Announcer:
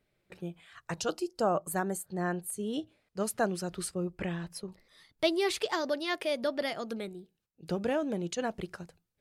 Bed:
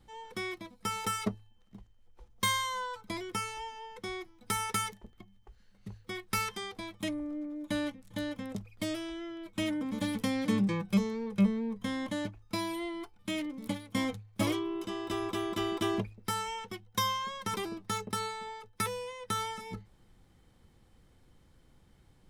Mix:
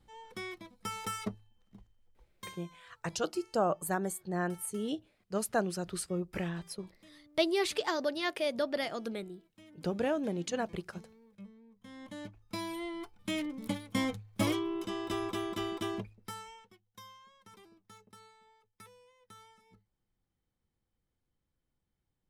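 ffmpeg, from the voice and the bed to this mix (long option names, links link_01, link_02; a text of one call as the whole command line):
ffmpeg -i stem1.wav -i stem2.wav -filter_complex "[0:a]adelay=2150,volume=-1dB[link_01];[1:a]volume=20dB,afade=type=out:start_time=1.91:duration=0.65:silence=0.1,afade=type=in:start_time=11.76:duration=1.43:silence=0.0595662,afade=type=out:start_time=15.01:duration=1.77:silence=0.0794328[link_02];[link_01][link_02]amix=inputs=2:normalize=0" out.wav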